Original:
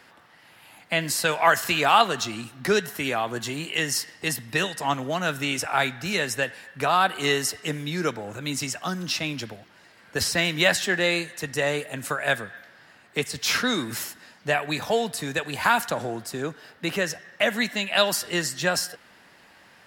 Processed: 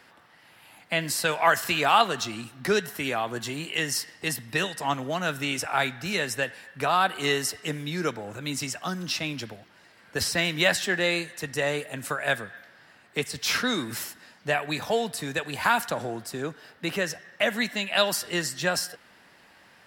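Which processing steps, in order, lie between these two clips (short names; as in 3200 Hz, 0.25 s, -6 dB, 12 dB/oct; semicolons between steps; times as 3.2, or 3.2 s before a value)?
notch 6700 Hz, Q 26; gain -2 dB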